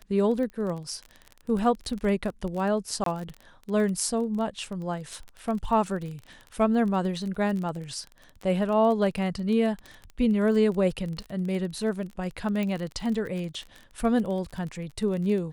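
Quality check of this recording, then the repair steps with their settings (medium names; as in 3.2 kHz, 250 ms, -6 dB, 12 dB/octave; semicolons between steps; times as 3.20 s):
crackle 28 per s -32 dBFS
3.04–3.06 s: dropout 23 ms
12.63 s: pop -18 dBFS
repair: de-click; interpolate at 3.04 s, 23 ms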